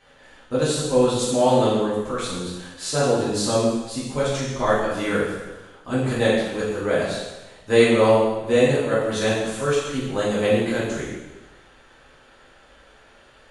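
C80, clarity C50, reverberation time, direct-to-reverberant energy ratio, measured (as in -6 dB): 3.0 dB, 0.5 dB, 1.1 s, -9.5 dB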